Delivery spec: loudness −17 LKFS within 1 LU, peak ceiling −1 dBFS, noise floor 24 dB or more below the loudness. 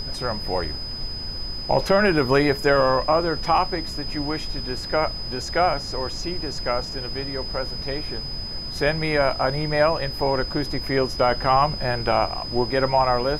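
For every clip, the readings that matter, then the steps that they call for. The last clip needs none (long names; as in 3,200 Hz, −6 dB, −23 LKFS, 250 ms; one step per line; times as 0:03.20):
interfering tone 5,000 Hz; level of the tone −31 dBFS; background noise floor −32 dBFS; target noise floor −47 dBFS; integrated loudness −23.0 LKFS; sample peak −7.0 dBFS; target loudness −17.0 LKFS
→ notch filter 5,000 Hz, Q 30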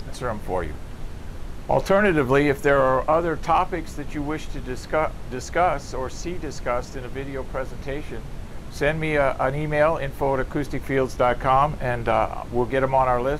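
interfering tone none found; background noise floor −36 dBFS; target noise floor −48 dBFS
→ noise reduction from a noise print 12 dB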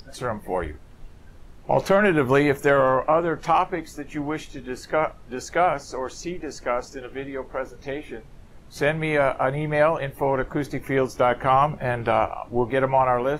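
background noise floor −46 dBFS; target noise floor −48 dBFS
→ noise reduction from a noise print 6 dB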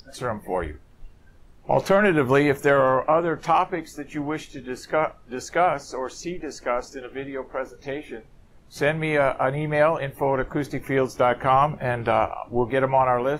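background noise floor −52 dBFS; integrated loudness −23.5 LKFS; sample peak −8.0 dBFS; target loudness −17.0 LKFS
→ level +6.5 dB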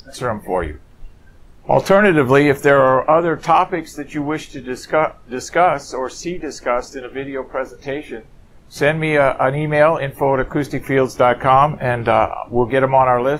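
integrated loudness −17.0 LKFS; sample peak −1.5 dBFS; background noise floor −45 dBFS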